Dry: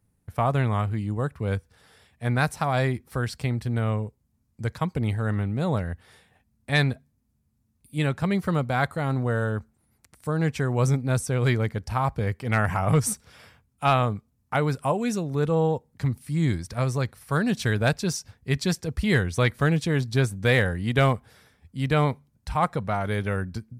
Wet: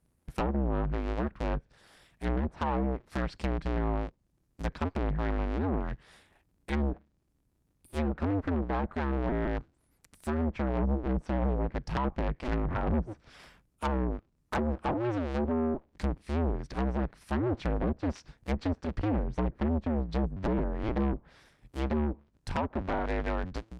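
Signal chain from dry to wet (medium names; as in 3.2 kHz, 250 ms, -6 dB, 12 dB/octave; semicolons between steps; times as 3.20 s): cycle switcher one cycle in 2, inverted; low-pass that closes with the level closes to 520 Hz, closed at -18.5 dBFS; Chebyshev shaper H 5 -15 dB, 8 -27 dB, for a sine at -11.5 dBFS; trim -8 dB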